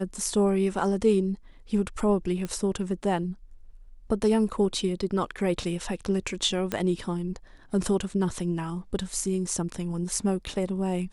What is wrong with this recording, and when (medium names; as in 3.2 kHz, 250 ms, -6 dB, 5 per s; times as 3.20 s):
2.45 s: pop -19 dBFS
6.72 s: pop -13 dBFS